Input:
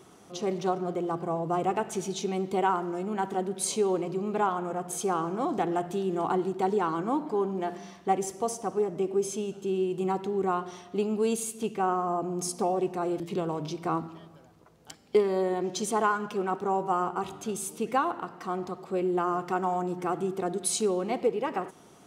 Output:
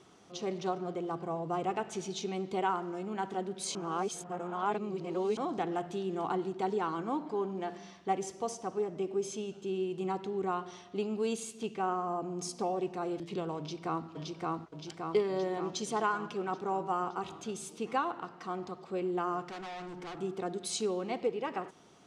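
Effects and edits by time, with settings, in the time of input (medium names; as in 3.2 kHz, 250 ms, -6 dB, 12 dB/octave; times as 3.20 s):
3.75–5.37 s: reverse
13.58–14.08 s: echo throw 570 ms, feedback 65%, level -0.5 dB
19.46–20.19 s: overload inside the chain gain 35.5 dB
whole clip: low-pass 4.8 kHz 12 dB/octave; treble shelf 3.2 kHz +9 dB; trim -6 dB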